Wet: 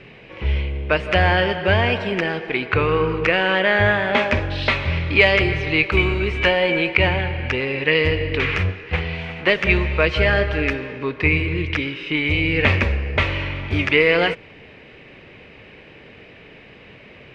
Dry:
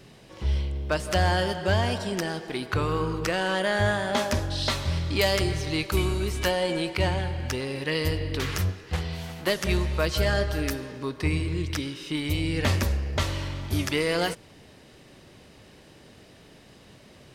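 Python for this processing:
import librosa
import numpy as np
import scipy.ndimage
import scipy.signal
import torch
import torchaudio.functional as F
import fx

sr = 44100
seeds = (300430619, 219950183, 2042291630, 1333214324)

y = fx.lowpass_res(x, sr, hz=2400.0, q=4.2)
y = fx.peak_eq(y, sr, hz=460.0, db=6.0, octaves=0.38)
y = F.gain(torch.from_numpy(y), 4.5).numpy()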